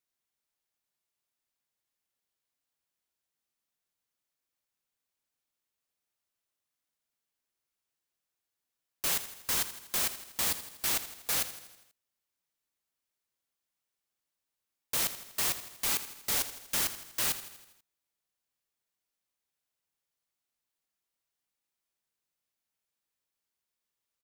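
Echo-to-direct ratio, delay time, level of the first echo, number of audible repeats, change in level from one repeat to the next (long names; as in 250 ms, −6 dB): −11.5 dB, 81 ms, −13.0 dB, 5, −5.0 dB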